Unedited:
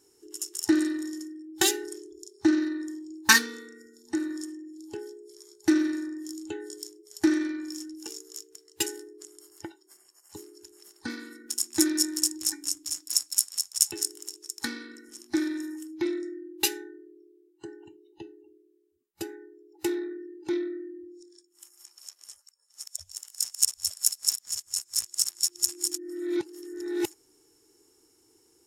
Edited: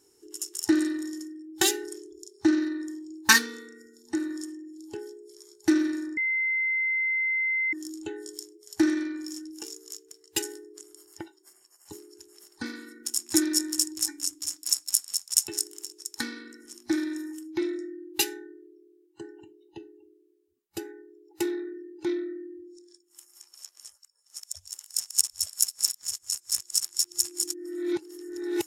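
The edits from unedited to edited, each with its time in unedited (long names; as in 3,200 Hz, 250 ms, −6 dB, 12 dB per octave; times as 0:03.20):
0:06.17: insert tone 2,070 Hz −23.5 dBFS 1.56 s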